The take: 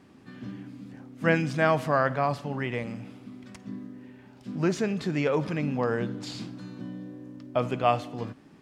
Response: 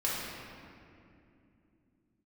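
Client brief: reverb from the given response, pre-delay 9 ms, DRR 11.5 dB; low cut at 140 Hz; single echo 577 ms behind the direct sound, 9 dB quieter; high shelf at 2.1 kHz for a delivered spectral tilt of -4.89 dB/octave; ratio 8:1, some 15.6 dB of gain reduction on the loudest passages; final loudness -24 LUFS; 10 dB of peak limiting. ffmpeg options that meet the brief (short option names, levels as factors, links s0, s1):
-filter_complex "[0:a]highpass=140,highshelf=f=2100:g=8.5,acompressor=threshold=0.0251:ratio=8,alimiter=level_in=1.5:limit=0.0631:level=0:latency=1,volume=0.668,aecho=1:1:577:0.355,asplit=2[s0][s1];[1:a]atrim=start_sample=2205,adelay=9[s2];[s1][s2]afir=irnorm=-1:irlink=0,volume=0.106[s3];[s0][s3]amix=inputs=2:normalize=0,volume=5.62"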